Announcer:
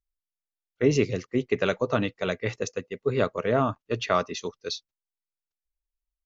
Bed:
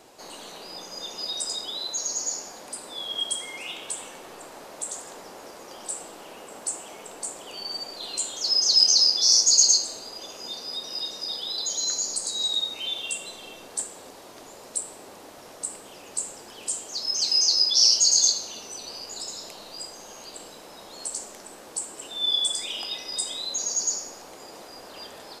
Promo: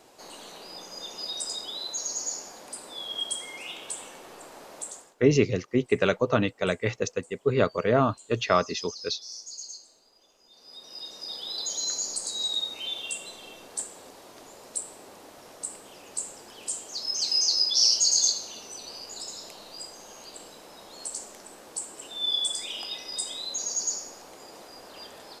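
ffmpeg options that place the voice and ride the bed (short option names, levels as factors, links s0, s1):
-filter_complex "[0:a]adelay=4400,volume=1.19[s0];[1:a]volume=7.08,afade=t=out:st=4.78:d=0.37:silence=0.1,afade=t=in:st=10.5:d=1.1:silence=0.1[s1];[s0][s1]amix=inputs=2:normalize=0"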